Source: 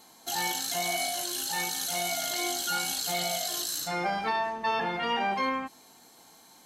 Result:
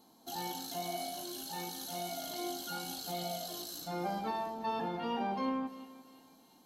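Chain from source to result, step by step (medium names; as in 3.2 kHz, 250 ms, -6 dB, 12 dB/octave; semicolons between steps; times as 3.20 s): graphic EQ 250/2000/8000 Hz +7/-12/-10 dB; two-band feedback delay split 2 kHz, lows 171 ms, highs 348 ms, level -15 dB; trim -6 dB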